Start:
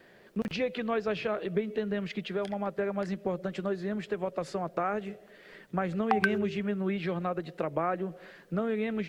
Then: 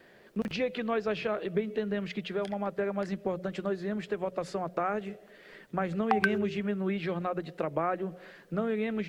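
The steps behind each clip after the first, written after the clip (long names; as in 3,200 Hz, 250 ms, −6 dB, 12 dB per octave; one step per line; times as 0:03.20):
mains-hum notches 60/120/180 Hz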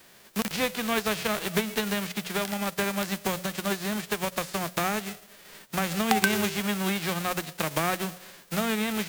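spectral envelope flattened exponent 0.3
level +3 dB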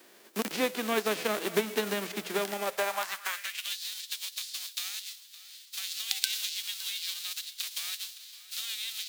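feedback echo with a high-pass in the loop 563 ms, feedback 48%, high-pass 420 Hz, level −17.5 dB
high-pass filter sweep 310 Hz → 3,900 Hz, 0:02.46–0:03.79
level −3.5 dB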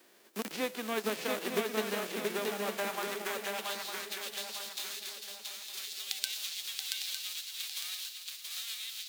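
feedback echo with a long and a short gap by turns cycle 905 ms, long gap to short 3 to 1, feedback 37%, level −3.5 dB
level −5.5 dB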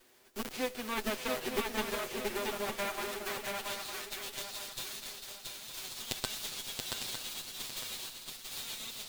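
lower of the sound and its delayed copy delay 7.9 ms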